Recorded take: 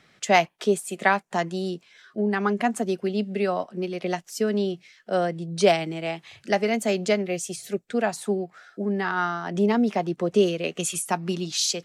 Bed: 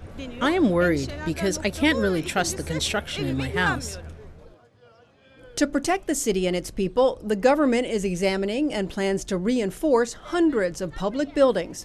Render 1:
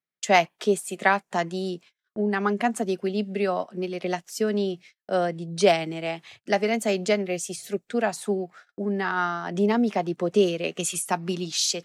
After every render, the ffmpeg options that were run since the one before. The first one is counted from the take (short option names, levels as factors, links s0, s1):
-af "agate=range=0.0141:threshold=0.00501:ratio=16:detection=peak,lowshelf=f=73:g=-10"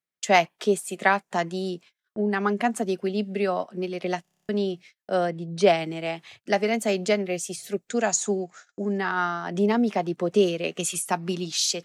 -filter_complex "[0:a]asettb=1/sr,asplit=3[s0][s1][s2];[s0]atrim=end=5.304[s3];[s1]atrim=start=5.3:end=5.77,asetpts=PTS-STARTPTS,afade=t=in:d=0.004:c=qsin,afade=t=out:st=0.466:d=0.004:c=qsin,aemphasis=mode=reproduction:type=cd[s4];[s2]atrim=start=5.766[s5];[s3][s4]acrossfade=d=0.004:c1=hsin:c2=qsin[s6];[s6][s5]acrossfade=d=0.004:c1=qsin:c2=hsin,asettb=1/sr,asplit=3[s7][s8][s9];[s7]atrim=end=7.894[s10];[s8]atrim=start=7.89:end=8.98,asetpts=PTS-STARTPTS,afade=t=in:d=0.004:c=qsin,afade=t=out:st=1.086:d=0.004:c=qsin,lowpass=f=6800:t=q:w=11[s11];[s9]atrim=start=8.976[s12];[s10][s11]acrossfade=d=0.004:c1=hsin:c2=qsin[s13];[s13][s12]acrossfade=d=0.004:c1=qsin:c2=hsin,asplit=10[s14][s15][s16][s17][s18][s19][s20][s21][s22][s23];[s14]atrim=end=4.252[s24];[s15]atrim=start=4.218:end=4.252[s25];[s16]atrim=start=4.218:end=4.252[s26];[s17]atrim=start=4.218:end=4.252[s27];[s18]atrim=start=4.218:end=4.252[s28];[s19]atrim=start=4.218:end=4.252[s29];[s20]atrim=start=4.218:end=4.252[s30];[s21]atrim=start=4.218:end=4.252[s31];[s22]atrim=start=4.218:end=4.252[s32];[s23]atrim=start=4.488[s33];[s24][s25]acrossfade=d=0.004:c1=hsin:c2=hsin[s34];[s34][s26]acrossfade=d=0.004:c1=hsin:c2=hsin[s35];[s35][s27]acrossfade=d=0.004:c1=hsin:c2=hsin[s36];[s36][s28]acrossfade=d=0.004:c1=hsin:c2=hsin[s37];[s37][s29]acrossfade=d=0.004:c1=hsin:c2=hsin[s38];[s38][s30]acrossfade=d=0.004:c1=hsin:c2=hsin[s39];[s39][s31]acrossfade=d=0.004:c1=hsin:c2=hsin[s40];[s40][s32]acrossfade=d=0.004:c1=hsin:c2=hsin[s41];[s41][s33]acrossfade=d=0.004:c1=hsin:c2=hsin"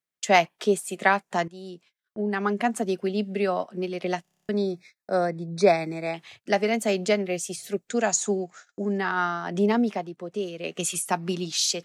-filter_complex "[0:a]asettb=1/sr,asplit=3[s0][s1][s2];[s0]atrim=end=4.514[s3];[s1]atrim=start=4.51:end=6.14,asetpts=PTS-STARTPTS,afade=t=in:d=0.004:c=qsin,afade=t=out:st=1.626:d=0.004:c=qsin,asuperstop=centerf=3000:order=12:qfactor=3.4[s4];[s2]atrim=start=6.136[s5];[s3][s4]acrossfade=d=0.004:c1=hsin:c2=qsin[s6];[s6][s5]acrossfade=d=0.004:c1=qsin:c2=hsin,asplit=4[s7][s8][s9][s10];[s7]atrim=end=1.48,asetpts=PTS-STARTPTS,afade=t=out:st=1.476:d=0.004:c=hsin:silence=0.16788[s11];[s8]atrim=start=1.48:end=10.11,asetpts=PTS-STARTPTS,afade=t=in:d=1.56:c=qsin:silence=0.16788,afade=t=out:st=8.31:d=0.32:silence=0.316228[s12];[s9]atrim=start=10.11:end=10.51,asetpts=PTS-STARTPTS,volume=0.316[s13];[s10]atrim=start=10.51,asetpts=PTS-STARTPTS,afade=t=in:d=0.32:silence=0.316228[s14];[s11][s12][s13][s14]concat=n=4:v=0:a=1"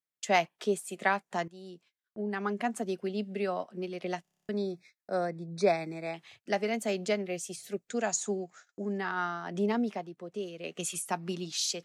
-af "volume=0.447"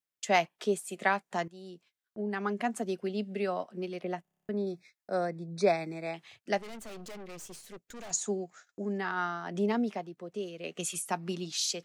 -filter_complex "[0:a]asettb=1/sr,asplit=3[s0][s1][s2];[s0]atrim=end=4.014[s3];[s1]atrim=start=4.01:end=4.67,asetpts=PTS-STARTPTS,afade=t=in:d=0.004:c=qsin,afade=t=out:st=0.656:d=0.004:c=qsin,equalizer=f=5300:t=o:w=2:g=-12.5[s4];[s2]atrim=start=4.666[s5];[s3][s4]acrossfade=d=0.004:c1=hsin:c2=qsin[s6];[s6][s5]acrossfade=d=0.004:c1=qsin:c2=hsin,asettb=1/sr,asplit=3[s7][s8][s9];[s7]atrim=end=6.584[s10];[s8]atrim=start=6.58:end=8.11,asetpts=PTS-STARTPTS,afade=t=in:d=0.004:c=qsin,afade=t=out:st=1.526:d=0.004:c=qsin,aeval=exprs='(tanh(141*val(0)+0.7)-tanh(0.7))/141':c=same[s11];[s9]atrim=start=8.106[s12];[s10][s11]acrossfade=d=0.004:c1=hsin:c2=qsin[s13];[s13][s12]acrossfade=d=0.004:c1=qsin:c2=hsin"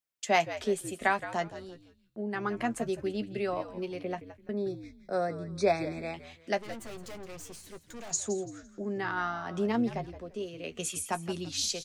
-filter_complex "[0:a]asplit=2[s0][s1];[s1]adelay=13,volume=0.282[s2];[s0][s2]amix=inputs=2:normalize=0,asplit=4[s3][s4][s5][s6];[s4]adelay=169,afreqshift=-82,volume=0.224[s7];[s5]adelay=338,afreqshift=-164,volume=0.0668[s8];[s6]adelay=507,afreqshift=-246,volume=0.0202[s9];[s3][s7][s8][s9]amix=inputs=4:normalize=0"